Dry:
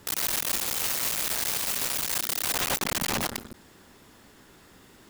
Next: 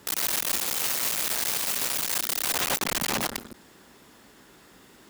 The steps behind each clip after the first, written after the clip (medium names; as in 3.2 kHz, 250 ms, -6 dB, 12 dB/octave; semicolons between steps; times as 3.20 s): high-pass 41 Hz; peaking EQ 87 Hz -7.5 dB 1.1 oct; trim +1 dB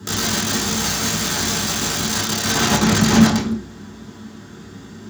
reverberation RT60 0.40 s, pre-delay 3 ms, DRR -5.5 dB; trim -1.5 dB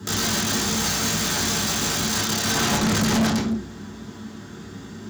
saturation -17 dBFS, distortion -8 dB